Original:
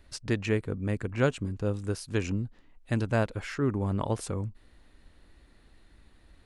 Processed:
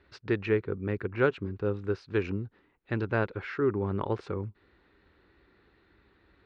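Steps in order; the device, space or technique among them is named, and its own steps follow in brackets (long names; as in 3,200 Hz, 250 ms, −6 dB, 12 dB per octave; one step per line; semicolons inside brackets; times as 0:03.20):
guitar cabinet (loudspeaker in its box 94–3,700 Hz, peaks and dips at 140 Hz −6 dB, 240 Hz −6 dB, 390 Hz +7 dB, 640 Hz −6 dB, 1,400 Hz +4 dB, 3,100 Hz −5 dB)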